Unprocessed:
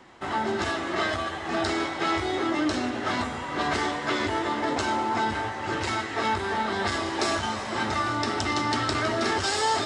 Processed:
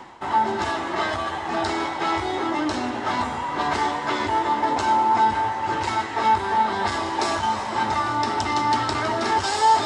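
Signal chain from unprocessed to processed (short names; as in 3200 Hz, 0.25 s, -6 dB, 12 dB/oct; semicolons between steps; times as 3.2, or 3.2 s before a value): bell 910 Hz +10.5 dB 0.38 oct; reverse; upward compressor, threshold -23 dBFS; reverse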